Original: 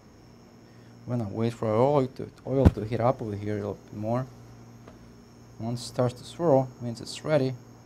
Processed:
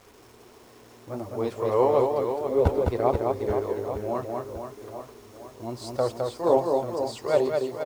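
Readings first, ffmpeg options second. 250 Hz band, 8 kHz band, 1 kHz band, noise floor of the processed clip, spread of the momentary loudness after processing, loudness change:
-3.0 dB, n/a, +3.5 dB, -52 dBFS, 17 LU, +2.0 dB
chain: -filter_complex "[0:a]equalizer=f=160:w=1:g=-7.5,flanger=delay=1.4:depth=7.2:regen=-24:speed=1.5:shape=sinusoidal,equalizer=f=160:t=o:w=0.67:g=-3,equalizer=f=400:t=o:w=0.67:g=10,equalizer=f=1k:t=o:w=0.67:g=7,asplit=2[a][b];[b]aecho=0:1:210|483|837.9|1299|1899:0.631|0.398|0.251|0.158|0.1[c];[a][c]amix=inputs=2:normalize=0,acrusher=bits=8:mix=0:aa=0.000001"

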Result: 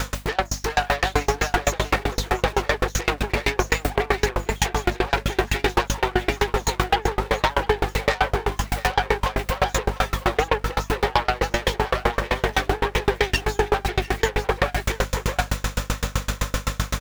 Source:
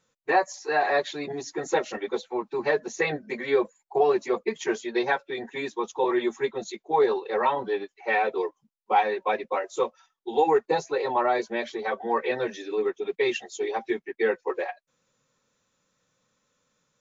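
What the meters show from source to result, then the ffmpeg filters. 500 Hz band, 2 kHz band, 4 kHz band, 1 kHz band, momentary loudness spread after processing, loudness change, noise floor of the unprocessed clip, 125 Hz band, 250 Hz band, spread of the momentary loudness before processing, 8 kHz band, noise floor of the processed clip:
+0.5 dB, +6.5 dB, +12.0 dB, +3.5 dB, 3 LU, +3.5 dB, -79 dBFS, +22.0 dB, +3.0 dB, 9 LU, n/a, -43 dBFS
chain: -af "aeval=exprs='val(0)+0.5*0.0282*sgn(val(0))':c=same,flanger=delay=4.7:depth=7.9:regen=87:speed=0.54:shape=sinusoidal,highshelf=f=2.7k:g=-11,acompressor=threshold=-30dB:ratio=6,aeval=exprs='0.075*(cos(1*acos(clip(val(0)/0.075,-1,1)))-cos(1*PI/2))+0.0168*(cos(6*acos(clip(val(0)/0.075,-1,1)))-cos(6*PI/2))':c=same,highpass=f=940:p=1,aeval=exprs='val(0)+0.00562*(sin(2*PI*50*n/s)+sin(2*PI*2*50*n/s)/2+sin(2*PI*3*50*n/s)/3+sin(2*PI*4*50*n/s)/4+sin(2*PI*5*50*n/s)/5)':c=same,aecho=1:1:701:0.631,alimiter=level_in=27.5dB:limit=-1dB:release=50:level=0:latency=1,aeval=exprs='val(0)*pow(10,-32*if(lt(mod(7.8*n/s,1),2*abs(7.8)/1000),1-mod(7.8*n/s,1)/(2*abs(7.8)/1000),(mod(7.8*n/s,1)-2*abs(7.8)/1000)/(1-2*abs(7.8)/1000))/20)':c=same,volume=-3dB"

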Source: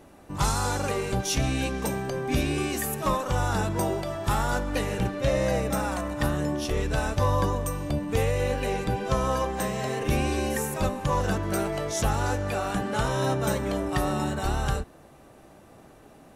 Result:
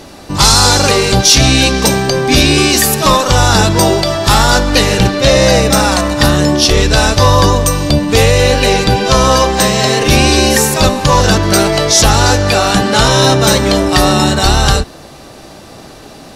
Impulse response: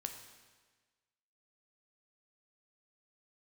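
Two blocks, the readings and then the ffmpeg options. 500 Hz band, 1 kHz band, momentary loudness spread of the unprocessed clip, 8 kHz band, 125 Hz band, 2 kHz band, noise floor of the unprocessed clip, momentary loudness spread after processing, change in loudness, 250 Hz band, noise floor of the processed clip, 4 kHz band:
+16.0 dB, +16.5 dB, 3 LU, +22.0 dB, +15.5 dB, +18.5 dB, -52 dBFS, 4 LU, +18.0 dB, +16.0 dB, -35 dBFS, +25.5 dB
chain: -af "equalizer=f=4.6k:w=1.2:g=14,apsyclip=18dB,volume=-1.5dB"

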